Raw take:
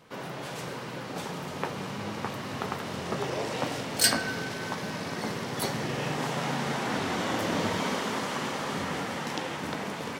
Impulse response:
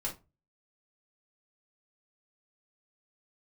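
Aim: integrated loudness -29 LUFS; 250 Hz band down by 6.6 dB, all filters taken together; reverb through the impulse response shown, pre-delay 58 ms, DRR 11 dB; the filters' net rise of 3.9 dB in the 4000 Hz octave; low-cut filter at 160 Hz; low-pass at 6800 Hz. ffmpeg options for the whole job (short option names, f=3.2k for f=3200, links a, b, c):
-filter_complex "[0:a]highpass=160,lowpass=6.8k,equalizer=f=250:t=o:g=-7.5,equalizer=f=4k:t=o:g=5.5,asplit=2[a][b];[1:a]atrim=start_sample=2205,adelay=58[c];[b][c]afir=irnorm=-1:irlink=0,volume=-13dB[d];[a][d]amix=inputs=2:normalize=0,volume=2dB"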